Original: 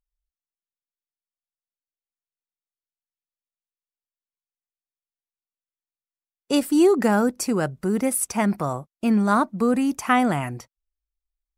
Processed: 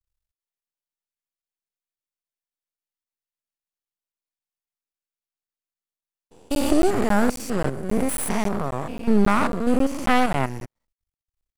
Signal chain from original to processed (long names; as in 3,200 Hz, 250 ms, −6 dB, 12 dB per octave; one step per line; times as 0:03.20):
spectrum averaged block by block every 200 ms
half-wave rectification
regular buffer underruns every 0.27 s, samples 512, zero, from 0:00.61
level +7 dB